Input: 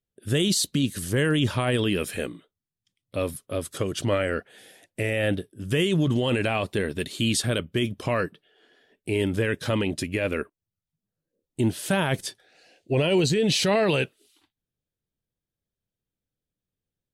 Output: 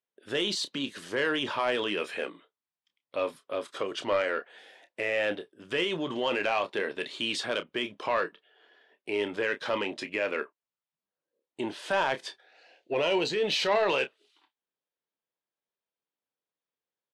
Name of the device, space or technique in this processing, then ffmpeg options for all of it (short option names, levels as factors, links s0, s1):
intercom: -filter_complex "[0:a]highpass=480,lowpass=3700,equalizer=f=970:t=o:w=0.47:g=5.5,asoftclip=type=tanh:threshold=0.141,asplit=2[s0][s1];[s1]adelay=29,volume=0.282[s2];[s0][s2]amix=inputs=2:normalize=0"